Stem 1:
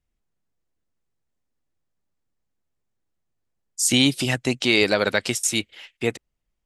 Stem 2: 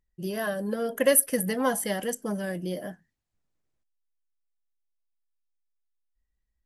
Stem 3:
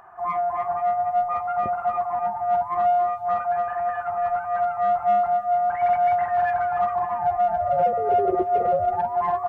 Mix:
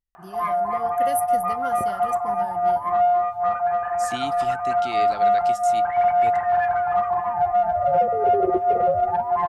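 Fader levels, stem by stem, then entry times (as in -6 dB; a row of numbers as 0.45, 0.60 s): -15.0, -10.0, +1.5 dB; 0.20, 0.00, 0.15 s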